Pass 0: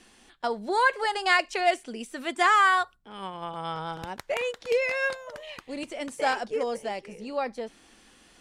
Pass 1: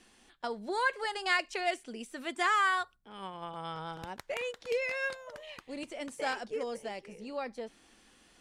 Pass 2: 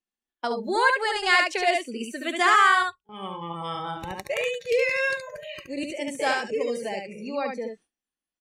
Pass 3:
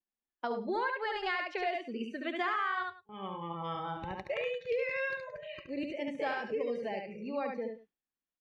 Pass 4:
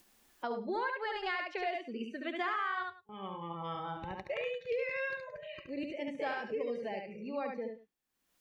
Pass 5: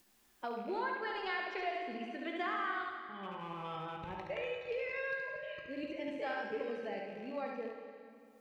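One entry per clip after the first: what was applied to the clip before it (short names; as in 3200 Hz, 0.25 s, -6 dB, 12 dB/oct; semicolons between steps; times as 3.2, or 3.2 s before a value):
dynamic EQ 770 Hz, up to -4 dB, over -33 dBFS, Q 1.1; gain -5.5 dB
echo 71 ms -3.5 dB; spectral noise reduction 21 dB; gate with hold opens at -48 dBFS; gain +8 dB
compressor 5:1, threshold -24 dBFS, peak gain reduction 9.5 dB; air absorption 270 m; echo 0.103 s -16.5 dB; gain -4.5 dB
upward compressor, threshold -41 dBFS; gain -2 dB
rattling part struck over -49 dBFS, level -44 dBFS; resonator 54 Hz, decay 1.7 s, harmonics all, mix 70%; plate-style reverb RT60 2.5 s, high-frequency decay 0.85×, DRR 5 dB; gain +5.5 dB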